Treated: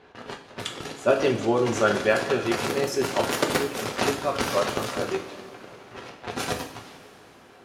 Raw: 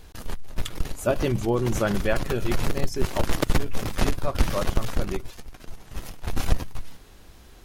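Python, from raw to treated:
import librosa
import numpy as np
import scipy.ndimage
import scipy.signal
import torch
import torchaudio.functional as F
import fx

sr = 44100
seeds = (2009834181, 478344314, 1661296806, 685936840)

y = fx.env_lowpass(x, sr, base_hz=2100.0, full_db=-14.5)
y = scipy.signal.sosfilt(scipy.signal.butter(2, 270.0, 'highpass', fs=sr, output='sos'), y)
y = fx.rev_double_slope(y, sr, seeds[0], early_s=0.45, late_s=4.0, knee_db=-18, drr_db=1.5)
y = F.gain(torch.from_numpy(y), 2.5).numpy()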